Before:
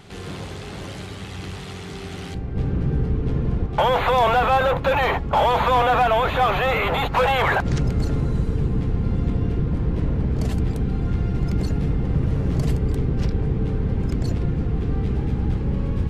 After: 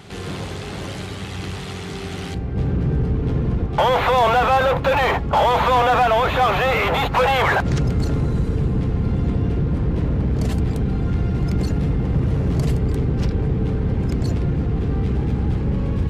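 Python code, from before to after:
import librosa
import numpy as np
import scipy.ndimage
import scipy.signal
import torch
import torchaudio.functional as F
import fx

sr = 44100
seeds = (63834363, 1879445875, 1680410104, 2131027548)

p1 = scipy.signal.sosfilt(scipy.signal.butter(2, 42.0, 'highpass', fs=sr, output='sos'), x)
p2 = np.clip(10.0 ** (24.0 / 20.0) * p1, -1.0, 1.0) / 10.0 ** (24.0 / 20.0)
y = p1 + (p2 * 10.0 ** (-4.5 / 20.0))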